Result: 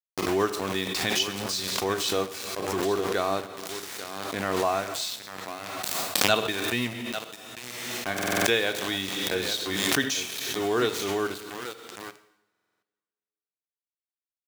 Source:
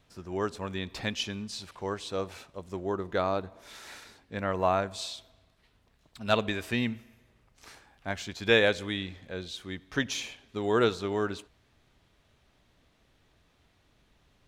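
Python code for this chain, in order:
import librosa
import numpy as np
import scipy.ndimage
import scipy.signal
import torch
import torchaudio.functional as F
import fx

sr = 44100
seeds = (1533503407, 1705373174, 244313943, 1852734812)

y = scipy.signal.sosfilt(scipy.signal.butter(2, 9400.0, 'lowpass', fs=sr, output='sos'), x)
y = fx.high_shelf(y, sr, hz=4000.0, db=9.0)
y = fx.rider(y, sr, range_db=5, speed_s=0.5)
y = y + 0.31 * np.pad(y, (int(2.7 * sr / 1000.0), 0))[:len(y)]
y = y + 10.0 ** (-10.5 / 20.0) * np.pad(y, (int(841 * sr / 1000.0), 0))[:len(y)]
y = np.where(np.abs(y) >= 10.0 ** (-33.0 / 20.0), y, 0.0)
y = scipy.signal.sosfilt(scipy.signal.butter(2, 110.0, 'highpass', fs=sr, output='sos'), y)
y = fx.rev_double_slope(y, sr, seeds[0], early_s=0.7, late_s=1.9, knee_db=-18, drr_db=10.5)
y = fx.buffer_glitch(y, sr, at_s=(8.14, 12.5), block=2048, repeats=6)
y = fx.pre_swell(y, sr, db_per_s=27.0)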